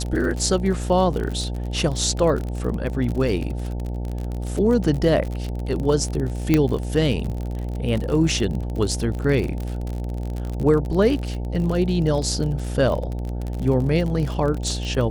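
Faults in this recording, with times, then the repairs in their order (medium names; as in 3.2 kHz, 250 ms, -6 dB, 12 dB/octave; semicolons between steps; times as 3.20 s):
buzz 60 Hz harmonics 15 -27 dBFS
crackle 40 per s -26 dBFS
6.54 s: pop -5 dBFS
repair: de-click; de-hum 60 Hz, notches 15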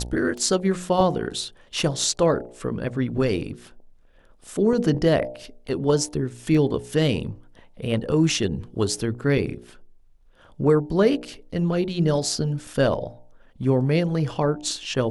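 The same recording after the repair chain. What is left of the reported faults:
6.54 s: pop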